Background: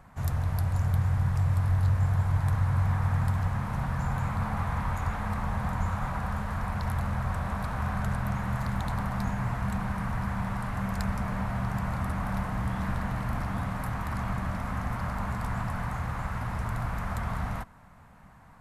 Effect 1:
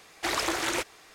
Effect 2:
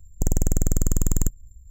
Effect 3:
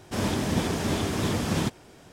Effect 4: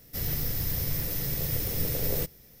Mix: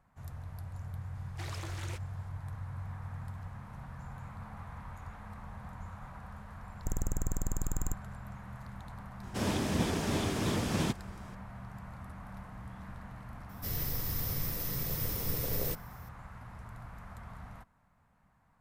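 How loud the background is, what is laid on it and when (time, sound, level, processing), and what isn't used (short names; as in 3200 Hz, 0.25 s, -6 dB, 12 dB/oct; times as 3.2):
background -15.5 dB
1.15 add 1 -17 dB
6.65 add 2 -12.5 dB
9.23 add 3 -5 dB + rattling part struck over -27 dBFS, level -33 dBFS
13.49 add 4 -5 dB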